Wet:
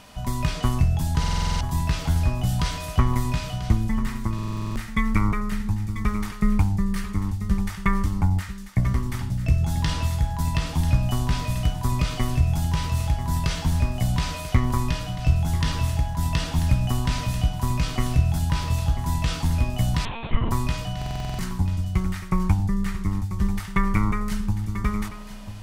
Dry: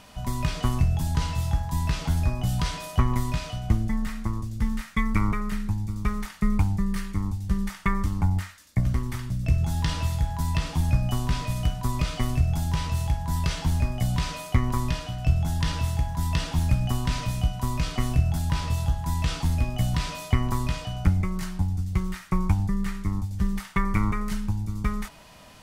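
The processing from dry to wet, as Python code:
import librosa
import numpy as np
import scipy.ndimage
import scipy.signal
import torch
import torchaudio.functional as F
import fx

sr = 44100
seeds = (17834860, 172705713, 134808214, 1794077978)

y = x + 10.0 ** (-12.5 / 20.0) * np.pad(x, (int(990 * sr / 1000.0), 0))[:len(x)]
y = fx.lpc_monotone(y, sr, seeds[0], pitch_hz=230.0, order=10, at=(20.05, 20.51))
y = fx.buffer_glitch(y, sr, at_s=(1.19, 4.34, 20.97), block=2048, repeats=8)
y = y * 10.0 ** (2.0 / 20.0)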